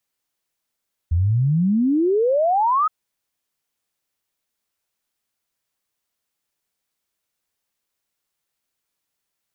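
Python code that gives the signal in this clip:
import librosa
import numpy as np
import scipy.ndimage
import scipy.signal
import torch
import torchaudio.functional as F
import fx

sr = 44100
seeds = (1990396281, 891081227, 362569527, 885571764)

y = fx.ess(sr, length_s=1.77, from_hz=79.0, to_hz=1300.0, level_db=-15.0)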